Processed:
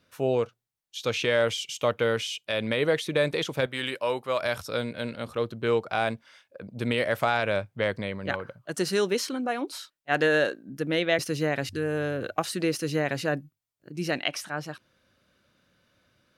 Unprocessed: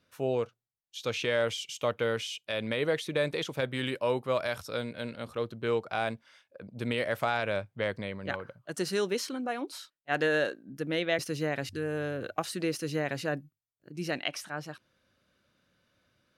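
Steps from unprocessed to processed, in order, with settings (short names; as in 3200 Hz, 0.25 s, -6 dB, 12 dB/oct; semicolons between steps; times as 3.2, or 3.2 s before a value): 3.66–4.42 low shelf 380 Hz -11 dB; gain +4.5 dB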